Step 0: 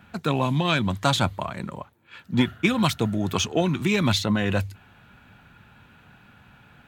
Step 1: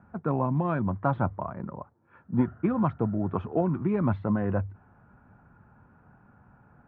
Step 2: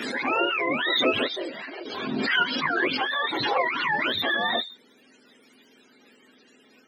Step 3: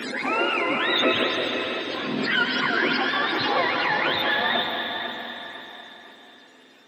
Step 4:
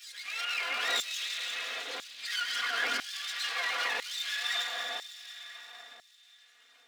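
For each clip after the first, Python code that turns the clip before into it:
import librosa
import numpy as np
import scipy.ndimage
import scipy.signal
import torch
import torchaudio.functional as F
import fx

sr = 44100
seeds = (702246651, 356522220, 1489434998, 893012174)

y1 = scipy.signal.sosfilt(scipy.signal.butter(4, 1300.0, 'lowpass', fs=sr, output='sos'), x)
y1 = F.gain(torch.from_numpy(y1), -3.0).numpy()
y2 = fx.octave_mirror(y1, sr, pivot_hz=600.0)
y2 = fx.low_shelf(y2, sr, hz=190.0, db=-7.0)
y2 = fx.pre_swell(y2, sr, db_per_s=29.0)
y2 = F.gain(torch.from_numpy(y2), 5.0).numpy()
y3 = fx.echo_feedback(y2, sr, ms=500, feedback_pct=33, wet_db=-10.0)
y3 = fx.rev_plate(y3, sr, seeds[0], rt60_s=3.6, hf_ratio=0.95, predelay_ms=110, drr_db=2.5)
y4 = fx.lower_of_two(y3, sr, delay_ms=4.2)
y4 = fx.notch(y4, sr, hz=940.0, q=6.4)
y4 = fx.filter_lfo_highpass(y4, sr, shape='saw_down', hz=1.0, low_hz=500.0, high_hz=5300.0, q=0.74)
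y4 = F.gain(torch.from_numpy(y4), -5.0).numpy()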